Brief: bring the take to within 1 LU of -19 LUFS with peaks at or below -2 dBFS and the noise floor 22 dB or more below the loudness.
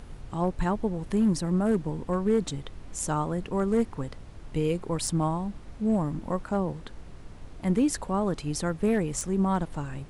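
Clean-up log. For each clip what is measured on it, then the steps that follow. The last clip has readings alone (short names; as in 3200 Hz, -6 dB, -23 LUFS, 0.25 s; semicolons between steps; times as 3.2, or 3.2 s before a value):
clipped 0.4%; flat tops at -17.0 dBFS; noise floor -45 dBFS; noise floor target -51 dBFS; loudness -28.5 LUFS; peak -17.0 dBFS; loudness target -19.0 LUFS
-> clip repair -17 dBFS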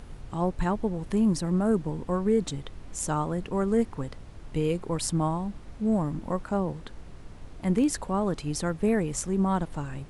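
clipped 0.0%; noise floor -45 dBFS; noise floor target -50 dBFS
-> noise print and reduce 6 dB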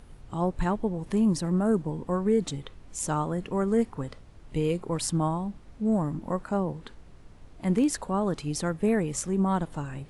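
noise floor -50 dBFS; loudness -28.0 LUFS; peak -13.5 dBFS; loudness target -19.0 LUFS
-> gain +9 dB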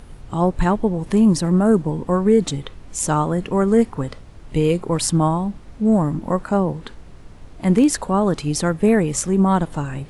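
loudness -19.0 LUFS; peak -4.5 dBFS; noise floor -41 dBFS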